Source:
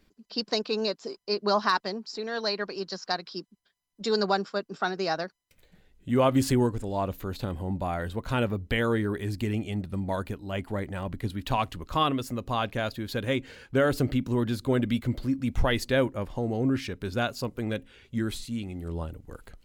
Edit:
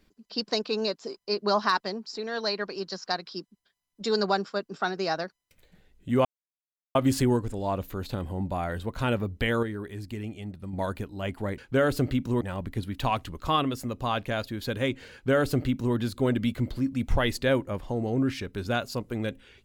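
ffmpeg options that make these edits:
-filter_complex "[0:a]asplit=6[a][b][c][d][e][f];[a]atrim=end=6.25,asetpts=PTS-STARTPTS,afade=t=out:st=6.246:d=0.004:c=hsin,apad=pad_dur=0.7[g];[b]atrim=start=6.25:end=8.932,asetpts=PTS-STARTPTS,afade=t=in:d=0.004:c=hsin[h];[c]atrim=start=8.928:end=10.032,asetpts=PTS-STARTPTS,volume=-6.5dB[i];[d]atrim=start=10.028:end=10.882[j];[e]atrim=start=13.588:end=14.422[k];[f]atrim=start=10.878[l];[g][h]concat=n=2:v=0:a=1[m];[m][i]acrossfade=d=0.004:c1=hsin:c2=hsin[n];[n][j]acrossfade=d=0.004:c1=hsin:c2=hsin[o];[o][k]acrossfade=d=0.004:c1=hsin:c2=hsin[p];[p][l]acrossfade=d=0.004:c1=hsin:c2=hsin"

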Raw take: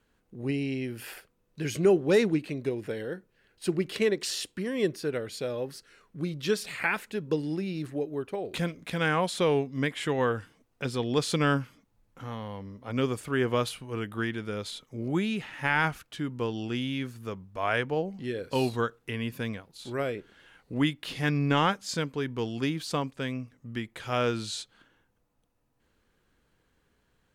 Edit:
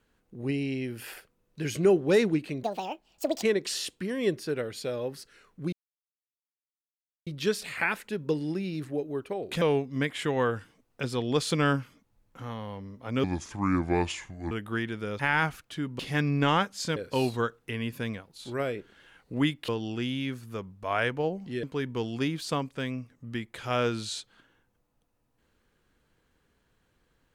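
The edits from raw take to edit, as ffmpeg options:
-filter_complex "[0:a]asplit=12[a][b][c][d][e][f][g][h][i][j][k][l];[a]atrim=end=2.634[m];[b]atrim=start=2.63:end=3.99,asetpts=PTS-STARTPTS,asetrate=75411,aresample=44100[n];[c]atrim=start=3.986:end=6.29,asetpts=PTS-STARTPTS,afade=t=out:st=2.3:d=0.004:c=hsin,apad=pad_dur=1.54[o];[d]atrim=start=6.29:end=8.642,asetpts=PTS-STARTPTS,afade=t=in:d=0.004:c=hsin[p];[e]atrim=start=9.428:end=13.054[q];[f]atrim=start=13.05:end=13.97,asetpts=PTS-STARTPTS,asetrate=31752,aresample=44100[r];[g]atrim=start=13.966:end=14.652[s];[h]atrim=start=15.608:end=16.412[t];[i]atrim=start=21.078:end=22.052[u];[j]atrim=start=18.358:end=21.082[v];[k]atrim=start=16.408:end=18.362[w];[l]atrim=start=22.048[x];[m][n]acrossfade=d=0.004:c1=hsin:c2=hsin[y];[o][p]concat=n=2:v=0:a=1[z];[y][z]acrossfade=d=0.004:c1=hsin:c2=hsin[aa];[aa][q]acrossfade=d=0.004:c1=hsin:c2=hsin[ab];[ab][r]acrossfade=d=0.004:c1=hsin:c2=hsin[ac];[ac][s]acrossfade=d=0.004:c1=hsin:c2=hsin[ad];[ad][t]acrossfade=d=0.004:c1=hsin:c2=hsin[ae];[ae][u]acrossfade=d=0.004:c1=hsin:c2=hsin[af];[af][v]acrossfade=d=0.004:c1=hsin:c2=hsin[ag];[ag][w]acrossfade=d=0.004:c1=hsin:c2=hsin[ah];[ah][x]acrossfade=d=0.004:c1=hsin:c2=hsin"

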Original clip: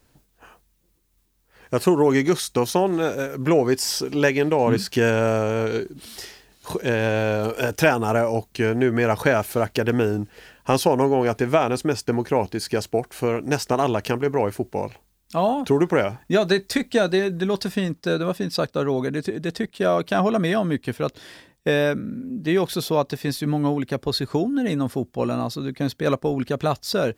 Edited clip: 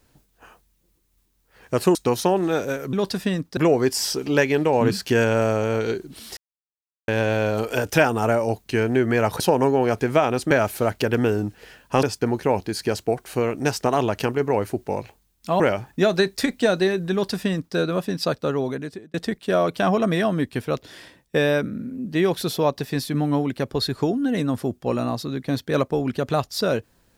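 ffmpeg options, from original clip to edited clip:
-filter_complex "[0:a]asplit=11[a][b][c][d][e][f][g][h][i][j][k];[a]atrim=end=1.952[l];[b]atrim=start=2.448:end=3.432[m];[c]atrim=start=17.438:end=18.082[n];[d]atrim=start=3.428:end=6.23,asetpts=PTS-STARTPTS,afade=t=out:st=2.798:d=0.004:c=hsin[o];[e]atrim=start=6.23:end=6.94,asetpts=PTS-STARTPTS,volume=0[p];[f]atrim=start=6.94:end=9.262,asetpts=PTS-STARTPTS,afade=t=in:d=0.004:c=hsin[q];[g]atrim=start=10.778:end=11.892[r];[h]atrim=start=9.258:end=10.782[s];[i]atrim=start=11.888:end=15.462[t];[j]atrim=start=15.918:end=19.46,asetpts=PTS-STARTPTS,afade=t=out:st=2.702:d=0.84:c=qsin[u];[k]atrim=start=19.46,asetpts=PTS-STARTPTS,afade=t=in:d=0.004:c=hsin[v];[l][m]acrossfade=d=0.004:c1=hsin:c2=hsin[w];[w][n]acrossfade=d=0.004:c1=hsin:c2=hsin[x];[o][p][q]concat=n=3:v=0:a=1[y];[x][y]acrossfade=d=0.004:c1=hsin:c2=hsin[z];[z][r]acrossfade=d=0.004:c1=hsin:c2=hsin[aa];[aa][s]acrossfade=d=0.004:c1=hsin:c2=hsin[ab];[ab][t]acrossfade=d=0.004:c1=hsin:c2=hsin[ac];[u][v]concat=n=2:v=0:a=1[ad];[ac][ad]acrossfade=d=0.004:c1=hsin:c2=hsin"

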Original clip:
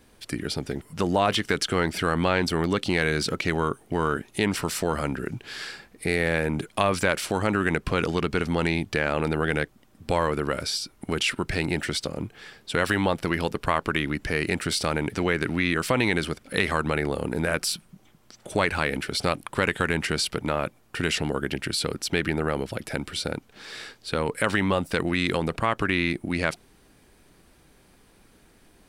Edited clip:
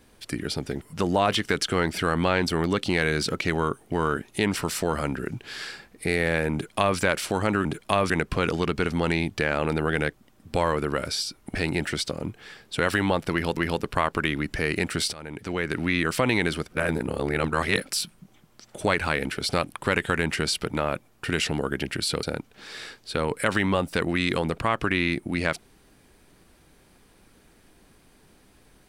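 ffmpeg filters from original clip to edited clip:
-filter_complex "[0:a]asplit=9[a][b][c][d][e][f][g][h][i];[a]atrim=end=7.652[j];[b]atrim=start=6.528:end=6.982[k];[c]atrim=start=7.648:end=11.102[l];[d]atrim=start=11.508:end=13.532[m];[e]atrim=start=13.278:end=14.84,asetpts=PTS-STARTPTS,afade=t=out:st=1.558:d=0.004:c=hsin:silence=0.105925[n];[f]atrim=start=14.84:end=16.422,asetpts=PTS-STARTPTS,afade=t=in:d=0.76:silence=0.105925[o];[g]atrim=start=16.418:end=17.632,asetpts=PTS-STARTPTS,areverse[p];[h]atrim=start=17.628:end=21.942[q];[i]atrim=start=23.208[r];[j][k]acrossfade=d=0.004:c1=hsin:c2=hsin[s];[s][l]acrossfade=d=0.004:c1=hsin:c2=hsin[t];[t][m]acrossfade=d=0.004:c1=hsin:c2=hsin[u];[n][o]concat=n=2:v=0:a=1[v];[u][v]acrossfade=d=0.004:c1=hsin:c2=hsin[w];[w][p]acrossfade=d=0.004:c1=hsin:c2=hsin[x];[x][q]acrossfade=d=0.004:c1=hsin:c2=hsin[y];[y][r]acrossfade=d=0.004:c1=hsin:c2=hsin"

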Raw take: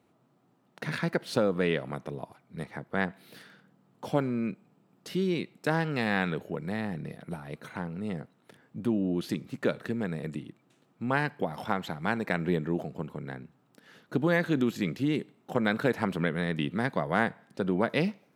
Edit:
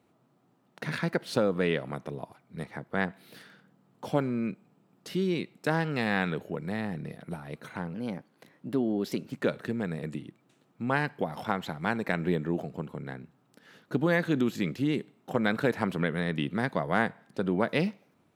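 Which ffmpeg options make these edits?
-filter_complex "[0:a]asplit=3[a][b][c];[a]atrim=end=7.944[d];[b]atrim=start=7.94:end=9.53,asetpts=PTS-STARTPTS,asetrate=50715,aresample=44100,atrim=end_sample=60973,asetpts=PTS-STARTPTS[e];[c]atrim=start=9.526[f];[d][e]acrossfade=d=0.004:c1=hsin:c2=hsin[g];[g][f]acrossfade=d=0.004:c1=hsin:c2=hsin"

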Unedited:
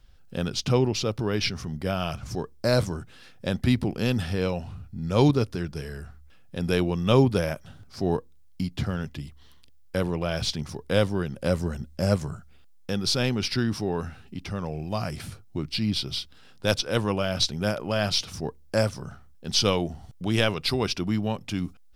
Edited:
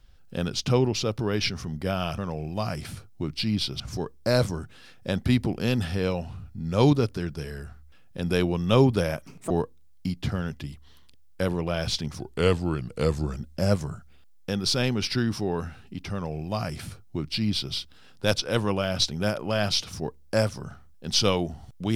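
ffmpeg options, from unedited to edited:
-filter_complex "[0:a]asplit=7[a][b][c][d][e][f][g];[a]atrim=end=2.182[h];[b]atrim=start=14.528:end=16.152[i];[c]atrim=start=2.178:end=7.644[j];[d]atrim=start=7.64:end=8.05,asetpts=PTS-STARTPTS,asetrate=74088,aresample=44100,atrim=end_sample=10762,asetpts=PTS-STARTPTS[k];[e]atrim=start=8.046:end=10.744[l];[f]atrim=start=10.74:end=11.77,asetpts=PTS-STARTPTS,asetrate=38808,aresample=44100,atrim=end_sample=51617,asetpts=PTS-STARTPTS[m];[g]atrim=start=11.766[n];[h][i]acrossfade=d=0.004:c1=hsin:c2=hsin[o];[o][j]acrossfade=d=0.004:c1=hsin:c2=hsin[p];[p][k]acrossfade=d=0.004:c1=hsin:c2=hsin[q];[q][l]acrossfade=d=0.004:c1=hsin:c2=hsin[r];[r][m]acrossfade=d=0.004:c1=hsin:c2=hsin[s];[s][n]acrossfade=d=0.004:c1=hsin:c2=hsin"

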